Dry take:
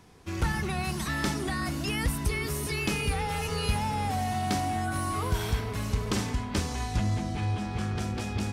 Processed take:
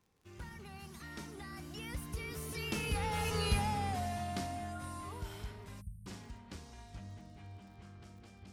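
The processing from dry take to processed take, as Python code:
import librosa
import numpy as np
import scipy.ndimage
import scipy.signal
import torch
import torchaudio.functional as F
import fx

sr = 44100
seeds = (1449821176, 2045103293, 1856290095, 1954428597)

y = fx.doppler_pass(x, sr, speed_mps=19, closest_m=9.1, pass_at_s=3.4)
y = fx.dmg_crackle(y, sr, seeds[0], per_s=34.0, level_db=-52.0)
y = fx.spec_erase(y, sr, start_s=5.81, length_s=0.26, low_hz=210.0, high_hz=8200.0)
y = F.gain(torch.from_numpy(y), -3.5).numpy()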